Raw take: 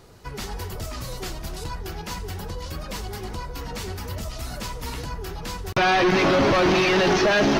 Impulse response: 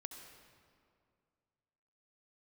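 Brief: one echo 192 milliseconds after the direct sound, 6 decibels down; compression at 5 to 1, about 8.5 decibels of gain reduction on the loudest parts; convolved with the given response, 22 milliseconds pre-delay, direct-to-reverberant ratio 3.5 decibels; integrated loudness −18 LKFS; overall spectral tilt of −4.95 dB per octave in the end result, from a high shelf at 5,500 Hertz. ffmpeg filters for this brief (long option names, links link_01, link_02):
-filter_complex "[0:a]highshelf=frequency=5500:gain=-3,acompressor=threshold=-27dB:ratio=5,aecho=1:1:192:0.501,asplit=2[link_01][link_02];[1:a]atrim=start_sample=2205,adelay=22[link_03];[link_02][link_03]afir=irnorm=-1:irlink=0,volume=0.5dB[link_04];[link_01][link_04]amix=inputs=2:normalize=0,volume=10.5dB"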